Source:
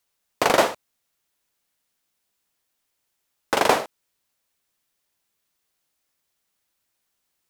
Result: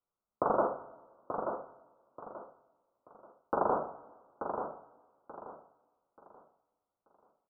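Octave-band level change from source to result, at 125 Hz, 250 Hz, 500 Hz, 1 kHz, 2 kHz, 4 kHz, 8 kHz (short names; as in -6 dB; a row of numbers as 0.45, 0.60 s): -8.0 dB, -8.0 dB, -8.5 dB, -8.0 dB, -21.5 dB, under -40 dB, under -40 dB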